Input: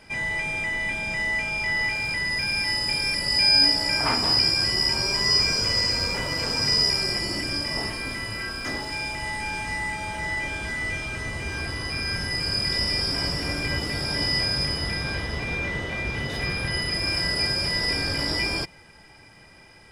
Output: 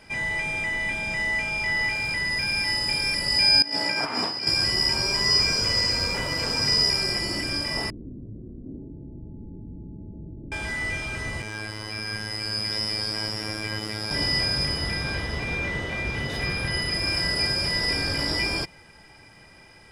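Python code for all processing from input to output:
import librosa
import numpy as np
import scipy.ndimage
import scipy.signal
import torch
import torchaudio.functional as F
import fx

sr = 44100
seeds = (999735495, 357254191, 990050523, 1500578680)

y = fx.chain(x, sr, fx.highpass(hz=190.0, slope=12),
    fx.high_shelf(hz=6000.0, db=-10.0),
    fx.over_compress(threshold_db=-27.0, ratio=-0.5), at=(3.62, 4.47))
y = fx.chain(y, sr, fx.cheby2_lowpass(hz=1900.0, order=4, stop_db=80),
    fx.low_shelf(hz=120.0, db=-7.0),
    fx.env_flatten(amount_pct=50), at=(7.9, 10.52))
y = fx.chain(y, sr, fx.low_shelf(hz=61.0, db=-11.0),
    fx.robotise(hz=107.0), at=(11.42, 14.11))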